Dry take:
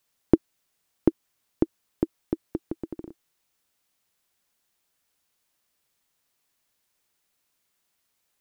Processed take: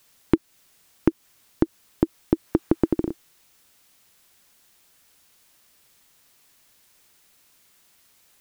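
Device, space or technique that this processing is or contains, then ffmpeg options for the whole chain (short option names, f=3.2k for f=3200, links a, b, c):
mastering chain: -filter_complex "[0:a]asettb=1/sr,asplit=3[a][b][c];[a]atrim=end=2.474[d];[b]atrim=start=2.47:end=2.92,asetpts=PTS-STARTPTS,afade=t=in:d=0.004:c=qsin,afade=t=out:st=0.446:d=0.004:c=qsin,equalizer=f=1.2k:t=o:w=1.5:g=5.5[e];[c]atrim=start=2.916[f];[d][e]acrossfade=d=0.004:c1=hsin:c2=qsin[g];[g][f]acrossfade=d=0.004:c1=qsin:c2=hsin,equalizer=f=690:t=o:w=1.9:g=-2,acompressor=threshold=-24dB:ratio=2,asoftclip=type=hard:threshold=-10.5dB,alimiter=level_in=18.5dB:limit=-1dB:release=50:level=0:latency=1,volume=-3dB"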